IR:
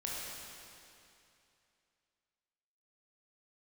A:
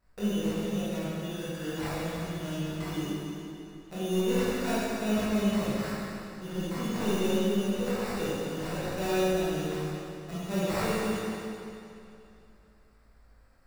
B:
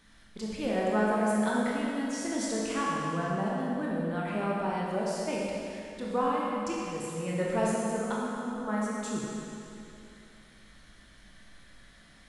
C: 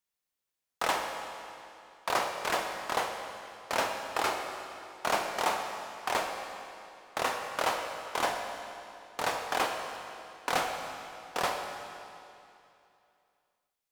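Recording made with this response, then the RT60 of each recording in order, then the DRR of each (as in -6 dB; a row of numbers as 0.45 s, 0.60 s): B; 2.7 s, 2.7 s, 2.7 s; -11.5 dB, -5.5 dB, 3.5 dB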